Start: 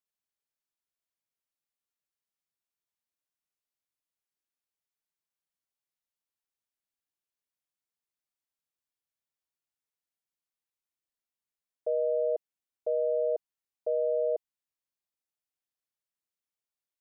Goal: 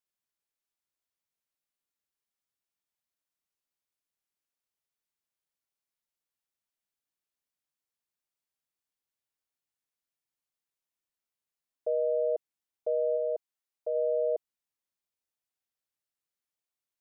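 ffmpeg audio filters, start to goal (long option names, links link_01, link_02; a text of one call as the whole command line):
ffmpeg -i in.wav -filter_complex "[0:a]asplit=3[link_01][link_02][link_03];[link_01]afade=type=out:start_time=13.16:duration=0.02[link_04];[link_02]lowshelf=frequency=350:gain=-7.5,afade=type=in:start_time=13.16:duration=0.02,afade=type=out:start_time=13.94:duration=0.02[link_05];[link_03]afade=type=in:start_time=13.94:duration=0.02[link_06];[link_04][link_05][link_06]amix=inputs=3:normalize=0" out.wav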